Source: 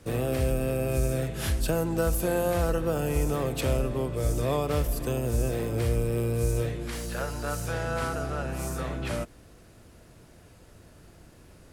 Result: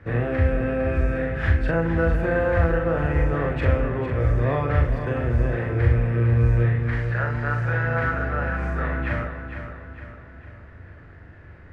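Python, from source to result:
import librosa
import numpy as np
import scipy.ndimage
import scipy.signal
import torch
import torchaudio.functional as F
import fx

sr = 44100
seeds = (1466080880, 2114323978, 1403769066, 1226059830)

y = fx.lowpass_res(x, sr, hz=1800.0, q=4.1)
y = fx.peak_eq(y, sr, hz=84.0, db=11.5, octaves=0.79)
y = fx.doubler(y, sr, ms=42.0, db=-4)
y = fx.echo_feedback(y, sr, ms=455, feedback_pct=46, wet_db=-9)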